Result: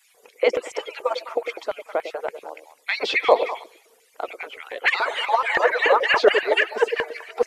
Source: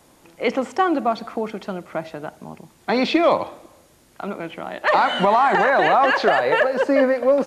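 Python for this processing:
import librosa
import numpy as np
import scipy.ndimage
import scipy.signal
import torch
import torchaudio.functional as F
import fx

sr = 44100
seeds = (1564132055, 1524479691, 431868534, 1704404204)

p1 = fx.hpss_only(x, sr, part='percussive')
p2 = fx.high_shelf(p1, sr, hz=5900.0, db=5.5)
p3 = fx.filter_lfo_highpass(p2, sr, shape='square', hz=3.5, low_hz=480.0, high_hz=2200.0, q=3.7)
p4 = fx.peak_eq(p3, sr, hz=180.0, db=-7.0, octaves=0.21)
p5 = p4 + fx.echo_stepped(p4, sr, ms=102, hz=400.0, octaves=1.4, feedback_pct=70, wet_db=-6.5, dry=0)
y = p5 * librosa.db_to_amplitude(-1.0)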